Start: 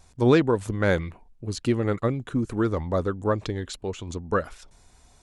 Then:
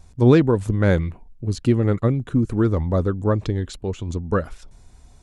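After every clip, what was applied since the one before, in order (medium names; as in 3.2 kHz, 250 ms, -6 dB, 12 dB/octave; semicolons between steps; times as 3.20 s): bass shelf 330 Hz +10.5 dB; trim -1 dB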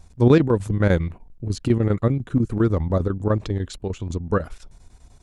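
square tremolo 10 Hz, depth 65%, duty 80%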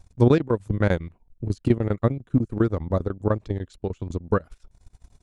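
transient shaper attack +7 dB, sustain -11 dB; trim -5.5 dB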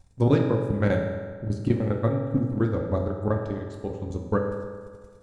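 reverberation RT60 1.7 s, pre-delay 3 ms, DRR 0.5 dB; trim -4 dB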